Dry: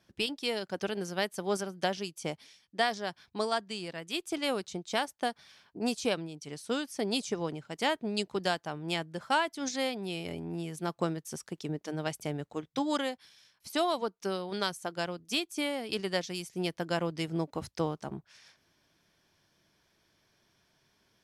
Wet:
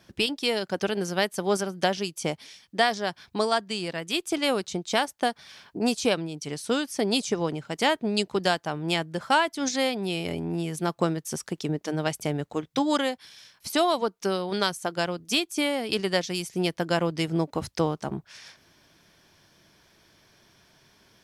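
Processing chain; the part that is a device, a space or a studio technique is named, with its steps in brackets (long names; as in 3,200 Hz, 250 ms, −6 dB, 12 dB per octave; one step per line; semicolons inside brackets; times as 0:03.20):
parallel compression (in parallel at 0 dB: downward compressor, threshold −44 dBFS, peak gain reduction 19.5 dB)
on the sum: level +5 dB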